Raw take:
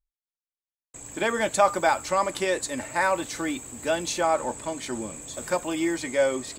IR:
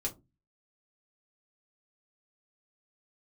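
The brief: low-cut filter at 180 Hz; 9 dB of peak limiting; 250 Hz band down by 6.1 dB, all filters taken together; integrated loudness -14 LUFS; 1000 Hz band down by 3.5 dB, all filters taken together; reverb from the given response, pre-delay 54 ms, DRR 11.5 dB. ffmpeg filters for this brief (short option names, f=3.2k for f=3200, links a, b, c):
-filter_complex "[0:a]highpass=180,equalizer=f=250:t=o:g=-8,equalizer=f=1k:t=o:g=-4,alimiter=limit=-18dB:level=0:latency=1,asplit=2[a][b];[1:a]atrim=start_sample=2205,adelay=54[c];[b][c]afir=irnorm=-1:irlink=0,volume=-13dB[d];[a][d]amix=inputs=2:normalize=0,volume=16dB"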